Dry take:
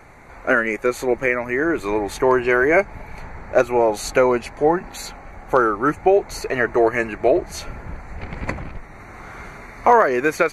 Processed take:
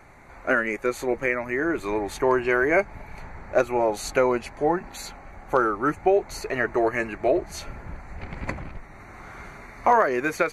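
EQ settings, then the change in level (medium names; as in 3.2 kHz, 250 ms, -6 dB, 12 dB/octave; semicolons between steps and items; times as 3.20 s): band-stop 470 Hz, Q 15; -4.5 dB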